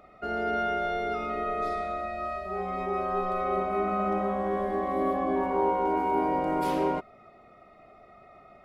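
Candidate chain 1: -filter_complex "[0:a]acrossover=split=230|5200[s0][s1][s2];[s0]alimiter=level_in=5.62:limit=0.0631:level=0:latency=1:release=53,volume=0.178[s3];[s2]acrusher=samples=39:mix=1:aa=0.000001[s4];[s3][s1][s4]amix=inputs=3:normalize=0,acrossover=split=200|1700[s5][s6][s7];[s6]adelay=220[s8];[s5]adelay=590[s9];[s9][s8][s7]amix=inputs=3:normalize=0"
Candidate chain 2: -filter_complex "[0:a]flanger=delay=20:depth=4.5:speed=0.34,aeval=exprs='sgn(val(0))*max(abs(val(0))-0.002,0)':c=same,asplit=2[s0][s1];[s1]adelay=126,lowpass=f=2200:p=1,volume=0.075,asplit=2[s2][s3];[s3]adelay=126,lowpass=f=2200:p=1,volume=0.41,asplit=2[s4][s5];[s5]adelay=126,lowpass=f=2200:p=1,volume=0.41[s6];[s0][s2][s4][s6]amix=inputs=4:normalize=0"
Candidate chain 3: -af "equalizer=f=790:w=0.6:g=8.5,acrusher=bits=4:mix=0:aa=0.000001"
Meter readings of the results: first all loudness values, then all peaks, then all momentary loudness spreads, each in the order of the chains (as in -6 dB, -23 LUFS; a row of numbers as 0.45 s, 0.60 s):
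-30.0 LUFS, -32.0 LUFS, -22.0 LUFS; -15.0 dBFS, -14.5 dBFS, -6.5 dBFS; 7 LU, 9 LU, 6 LU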